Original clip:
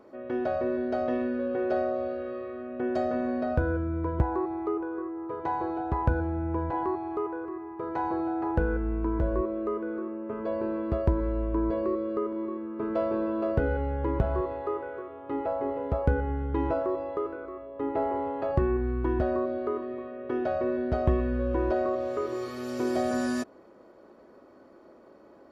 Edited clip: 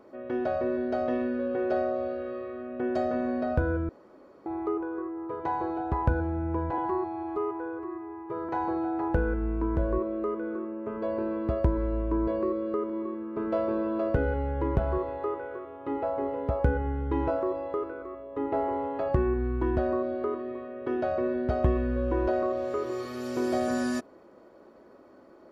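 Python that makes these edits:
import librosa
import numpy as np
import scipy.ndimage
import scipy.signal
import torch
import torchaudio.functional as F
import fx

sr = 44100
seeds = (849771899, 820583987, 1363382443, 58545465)

y = fx.edit(x, sr, fx.room_tone_fill(start_s=3.89, length_s=0.57),
    fx.stretch_span(start_s=6.78, length_s=1.14, factor=1.5), tone=tone)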